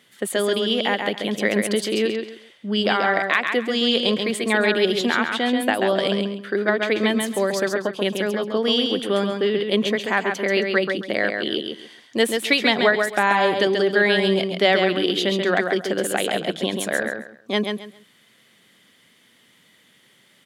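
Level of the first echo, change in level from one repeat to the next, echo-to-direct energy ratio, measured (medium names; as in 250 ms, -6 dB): -5.0 dB, -12.5 dB, -4.5 dB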